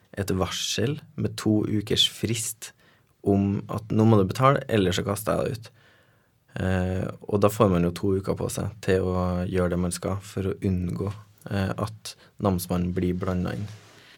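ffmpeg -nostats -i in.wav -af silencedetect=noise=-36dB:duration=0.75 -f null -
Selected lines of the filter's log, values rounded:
silence_start: 5.67
silence_end: 6.56 | silence_duration: 0.89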